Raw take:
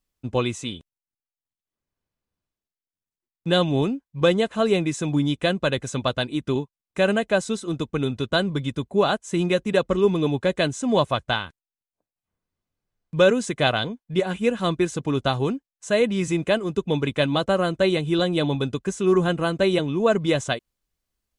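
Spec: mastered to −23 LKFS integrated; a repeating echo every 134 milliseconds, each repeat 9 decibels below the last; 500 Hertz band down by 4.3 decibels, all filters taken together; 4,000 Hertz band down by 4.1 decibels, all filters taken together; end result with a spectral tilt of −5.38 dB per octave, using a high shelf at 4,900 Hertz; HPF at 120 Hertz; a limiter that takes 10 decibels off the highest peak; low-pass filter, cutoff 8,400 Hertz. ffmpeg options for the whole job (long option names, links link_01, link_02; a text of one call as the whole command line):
ffmpeg -i in.wav -af "highpass=120,lowpass=8400,equalizer=frequency=500:width_type=o:gain=-5.5,equalizer=frequency=4000:width_type=o:gain=-8,highshelf=frequency=4900:gain=7.5,alimiter=limit=-15.5dB:level=0:latency=1,aecho=1:1:134|268|402|536:0.355|0.124|0.0435|0.0152,volume=4.5dB" out.wav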